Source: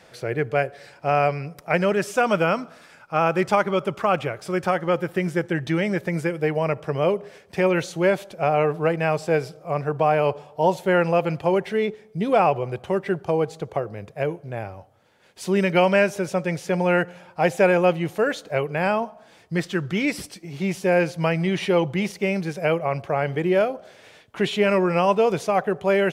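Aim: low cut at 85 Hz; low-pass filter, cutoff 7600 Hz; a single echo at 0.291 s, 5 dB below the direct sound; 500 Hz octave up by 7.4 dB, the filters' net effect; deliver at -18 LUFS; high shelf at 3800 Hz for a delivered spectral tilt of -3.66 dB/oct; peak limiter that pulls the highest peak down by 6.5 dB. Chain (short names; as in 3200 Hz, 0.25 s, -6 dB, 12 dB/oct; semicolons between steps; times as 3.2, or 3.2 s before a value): HPF 85 Hz; LPF 7600 Hz; bell 500 Hz +9 dB; high shelf 3800 Hz -8.5 dB; limiter -7.5 dBFS; echo 0.291 s -5 dB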